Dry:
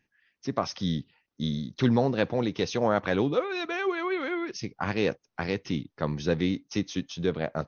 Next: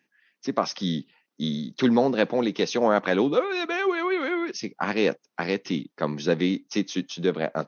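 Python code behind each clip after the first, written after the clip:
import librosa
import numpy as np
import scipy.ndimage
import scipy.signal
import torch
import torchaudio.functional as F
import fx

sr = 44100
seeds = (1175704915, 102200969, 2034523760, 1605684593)

y = scipy.signal.sosfilt(scipy.signal.butter(4, 180.0, 'highpass', fs=sr, output='sos'), x)
y = y * 10.0 ** (4.0 / 20.0)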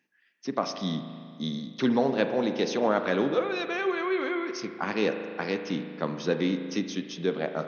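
y = fx.rev_spring(x, sr, rt60_s=2.2, pass_ms=(37,), chirp_ms=45, drr_db=7.5)
y = y * 10.0 ** (-4.0 / 20.0)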